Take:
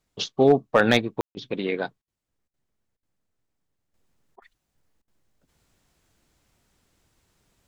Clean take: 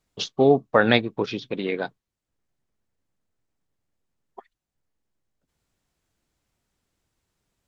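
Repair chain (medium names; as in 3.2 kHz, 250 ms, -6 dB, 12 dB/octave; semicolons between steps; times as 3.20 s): clip repair -8 dBFS; room tone fill 1.21–1.35 s; interpolate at 1.31/2.02/2.48/2.97/4.36/5.02 s, 57 ms; gain correction -9 dB, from 3.94 s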